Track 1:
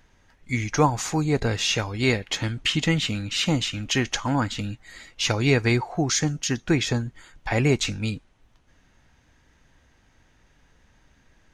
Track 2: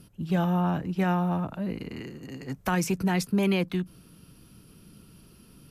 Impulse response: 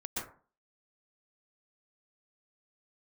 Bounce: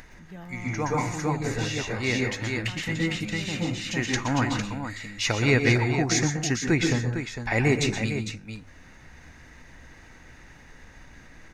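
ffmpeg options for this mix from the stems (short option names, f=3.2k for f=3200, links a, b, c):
-filter_complex "[0:a]bandreject=f=3.2k:w=8.5,acompressor=mode=upward:threshold=-36dB:ratio=2.5,volume=-4.5dB,asplit=3[a][b][c];[b]volume=-5.5dB[d];[c]volume=-6.5dB[e];[1:a]volume=-17.5dB,asplit=2[f][g];[g]apad=whole_len=508857[h];[a][h]sidechaincompress=threshold=-60dB:ratio=8:attack=16:release=244[i];[2:a]atrim=start_sample=2205[j];[d][j]afir=irnorm=-1:irlink=0[k];[e]aecho=0:1:454:1[l];[i][f][k][l]amix=inputs=4:normalize=0,equalizer=f=2k:t=o:w=0.4:g=6.5,bandreject=f=50:t=h:w=6,bandreject=f=100:t=h:w=6"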